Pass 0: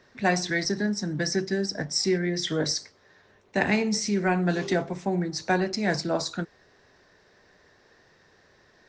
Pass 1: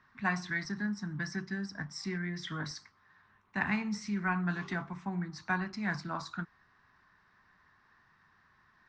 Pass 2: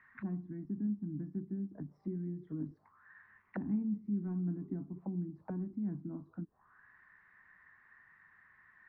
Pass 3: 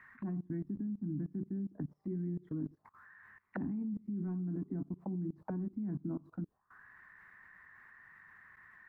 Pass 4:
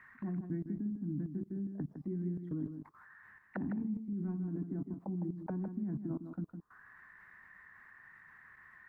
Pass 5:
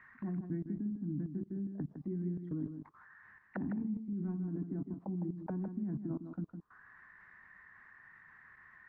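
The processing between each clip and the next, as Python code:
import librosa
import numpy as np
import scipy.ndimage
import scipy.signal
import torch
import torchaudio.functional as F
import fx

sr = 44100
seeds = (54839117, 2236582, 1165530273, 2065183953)

y1 = fx.curve_eq(x, sr, hz=(210.0, 520.0, 1100.0, 1700.0, 6900.0), db=(0, -18, 9, 2, -12))
y1 = y1 * 10.0 ** (-7.0 / 20.0)
y2 = fx.envelope_lowpass(y1, sr, base_hz=290.0, top_hz=2100.0, q=5.0, full_db=-35.0, direction='down')
y2 = y2 * 10.0 ** (-6.0 / 20.0)
y3 = fx.level_steps(y2, sr, step_db=22)
y3 = y3 * 10.0 ** (7.5 / 20.0)
y4 = y3 + 10.0 ** (-8.0 / 20.0) * np.pad(y3, (int(158 * sr / 1000.0), 0))[:len(y3)]
y5 = fx.air_absorb(y4, sr, metres=93.0)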